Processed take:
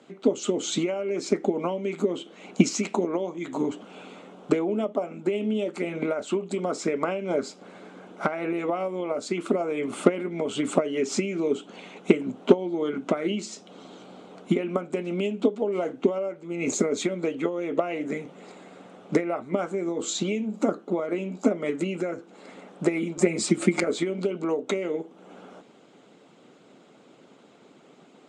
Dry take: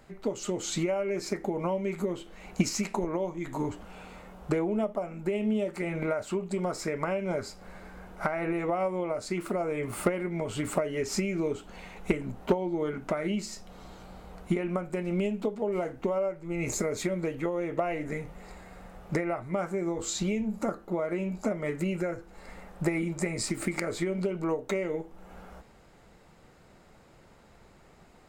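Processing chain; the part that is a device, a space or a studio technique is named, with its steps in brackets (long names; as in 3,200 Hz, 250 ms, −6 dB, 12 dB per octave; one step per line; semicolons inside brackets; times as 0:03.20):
television speaker (loudspeaker in its box 170–7,900 Hz, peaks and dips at 270 Hz +9 dB, 420 Hz +4 dB, 930 Hz −4 dB, 1,800 Hz −7 dB, 3,300 Hz +6 dB, 4,900 Hz −5 dB)
0:23.17–0:23.84: comb filter 5.6 ms, depth 87%
harmonic and percussive parts rebalanced percussive +7 dB
level −1 dB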